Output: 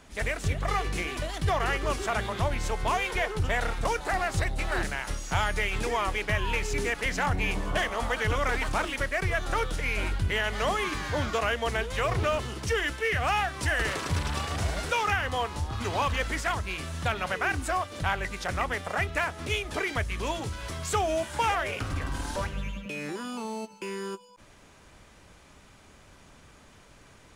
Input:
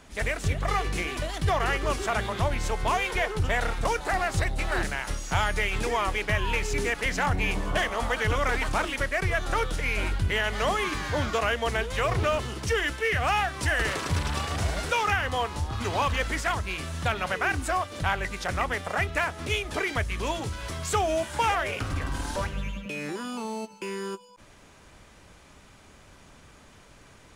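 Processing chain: 8.55–9.73 crackle 230/s -47 dBFS; gain -1.5 dB

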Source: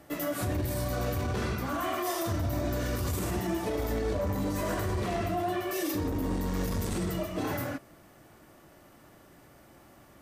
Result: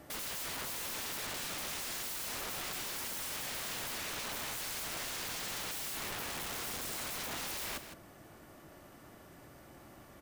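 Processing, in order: wrapped overs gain 35.5 dB; echo 0.161 s -10.5 dB

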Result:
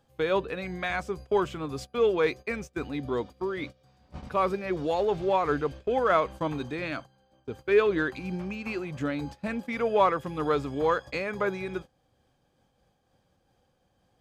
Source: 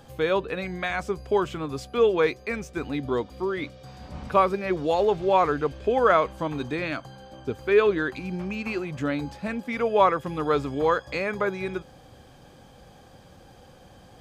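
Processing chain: gate -36 dBFS, range -17 dB; in parallel at -11.5 dB: soft clip -24 dBFS, distortion -7 dB; on the sum: noise-modulated level, depth 60%; gain -1.5 dB

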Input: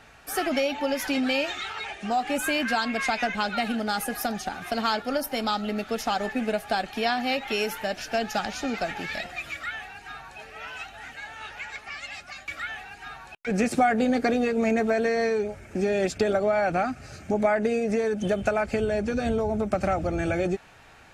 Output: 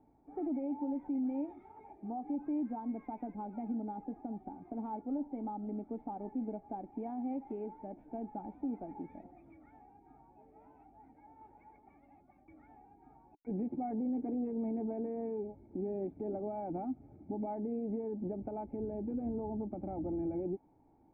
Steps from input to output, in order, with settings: vocal tract filter u; limiter -29.5 dBFS, peak gain reduction 10 dB

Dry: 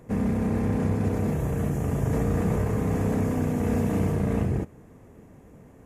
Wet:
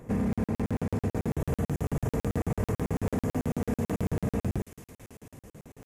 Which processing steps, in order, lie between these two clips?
2.7–3.52 HPF 41 Hz 24 dB/oct; limiter -22.5 dBFS, peak gain reduction 8 dB; thin delay 0.692 s, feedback 52%, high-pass 3500 Hz, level -3.5 dB; crackling interface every 0.11 s, samples 2048, zero, from 0.33; gain +2 dB

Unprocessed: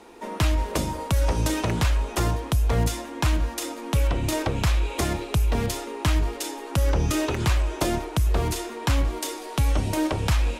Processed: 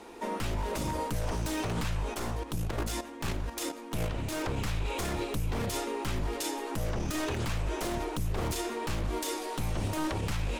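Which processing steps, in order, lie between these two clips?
one-sided fold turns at -24.5 dBFS; 2.14–4.45 level quantiser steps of 11 dB; limiter -23 dBFS, peak gain reduction 10.5 dB

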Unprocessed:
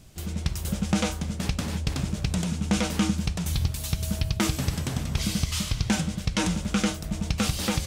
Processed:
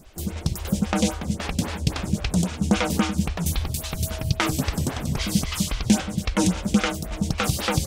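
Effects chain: photocell phaser 3.7 Hz; gain +7.5 dB

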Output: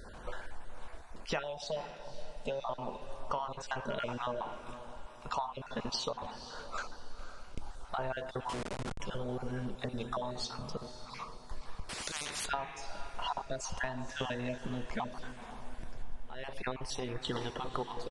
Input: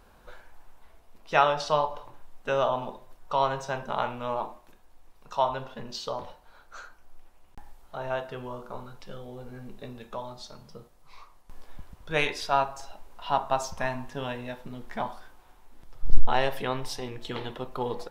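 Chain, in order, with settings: random spectral dropouts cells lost 30%; compressor 20:1, threshold -41 dBFS, peak gain reduction 36 dB; 1.43–2.6 fixed phaser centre 330 Hz, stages 6; diffused feedback echo 0.517 s, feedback 42%, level -12 dB; 8.49–9 Schmitt trigger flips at -49.5 dBFS; downsampling 22050 Hz; 11.89–12.46 spectral compressor 10:1; gain +8.5 dB

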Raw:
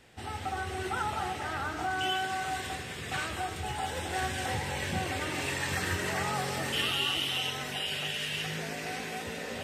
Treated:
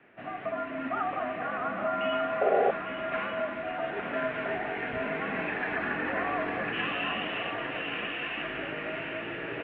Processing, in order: echo 0.851 s -8.5 dB; mistuned SSB -110 Hz 280–2600 Hz; on a send: echo 1.195 s -8.5 dB; on the sum: painted sound noise, 2.41–2.71, 370–810 Hz -26 dBFS; gain +2 dB

